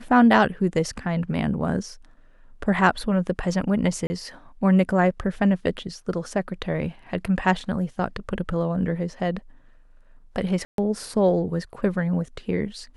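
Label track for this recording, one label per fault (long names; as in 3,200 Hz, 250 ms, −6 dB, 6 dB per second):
4.070000	4.100000	drop-out 30 ms
10.650000	10.780000	drop-out 132 ms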